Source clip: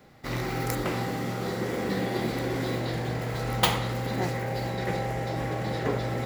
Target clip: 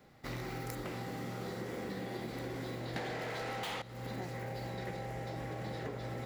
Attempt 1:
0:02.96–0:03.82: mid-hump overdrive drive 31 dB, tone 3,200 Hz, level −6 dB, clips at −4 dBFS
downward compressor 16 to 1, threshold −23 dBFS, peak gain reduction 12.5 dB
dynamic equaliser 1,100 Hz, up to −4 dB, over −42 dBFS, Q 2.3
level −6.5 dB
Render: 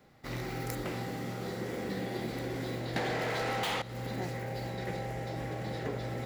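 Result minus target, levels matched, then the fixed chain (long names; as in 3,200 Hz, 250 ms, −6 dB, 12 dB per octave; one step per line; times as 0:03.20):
downward compressor: peak gain reduction −6.5 dB
0:02.96–0:03.82: mid-hump overdrive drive 31 dB, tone 3,200 Hz, level −6 dB, clips at −4 dBFS
downward compressor 16 to 1, threshold −30 dBFS, peak gain reduction 19 dB
dynamic equaliser 1,100 Hz, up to −4 dB, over −42 dBFS, Q 2.3
level −6.5 dB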